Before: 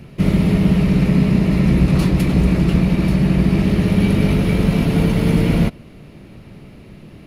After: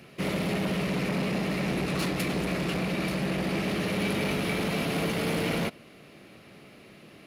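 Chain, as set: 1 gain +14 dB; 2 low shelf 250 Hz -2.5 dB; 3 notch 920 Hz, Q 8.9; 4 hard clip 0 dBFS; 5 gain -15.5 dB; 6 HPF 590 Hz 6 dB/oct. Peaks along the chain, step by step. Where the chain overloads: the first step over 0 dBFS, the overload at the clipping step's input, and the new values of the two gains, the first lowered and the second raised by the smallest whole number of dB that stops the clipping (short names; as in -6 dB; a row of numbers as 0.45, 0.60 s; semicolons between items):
+11.0, +9.5, +9.5, 0.0, -15.5, -15.5 dBFS; step 1, 9.5 dB; step 1 +4 dB, step 5 -5.5 dB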